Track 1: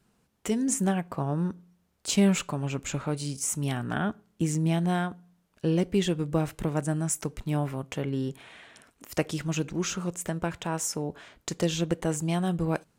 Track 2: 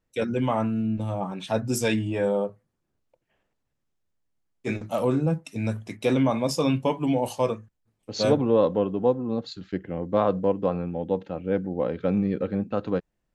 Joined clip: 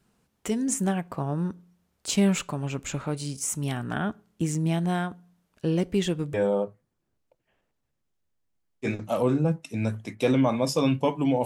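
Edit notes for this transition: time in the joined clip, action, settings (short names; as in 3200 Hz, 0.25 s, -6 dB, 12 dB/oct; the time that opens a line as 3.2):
track 1
6.34 switch to track 2 from 2.16 s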